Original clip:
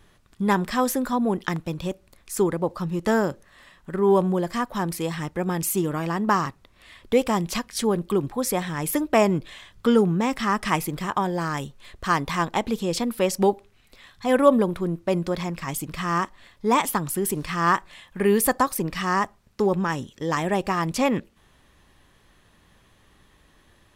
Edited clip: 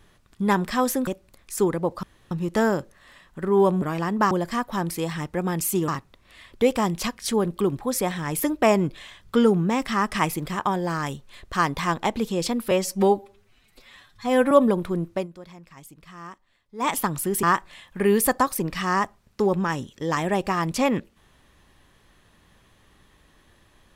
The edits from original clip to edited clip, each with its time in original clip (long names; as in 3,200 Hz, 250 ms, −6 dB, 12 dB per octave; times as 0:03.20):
0:01.07–0:01.86: remove
0:02.82: splice in room tone 0.28 s
0:05.90–0:06.39: move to 0:04.33
0:13.22–0:14.42: time-stretch 1.5×
0:15.05–0:16.82: duck −16.5 dB, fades 0.13 s
0:17.34–0:17.63: remove